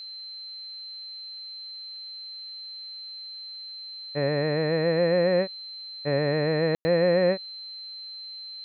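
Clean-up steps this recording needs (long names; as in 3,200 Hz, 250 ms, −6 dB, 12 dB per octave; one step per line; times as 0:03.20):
notch filter 4,100 Hz, Q 30
ambience match 0:06.75–0:06.85
downward expander −32 dBFS, range −21 dB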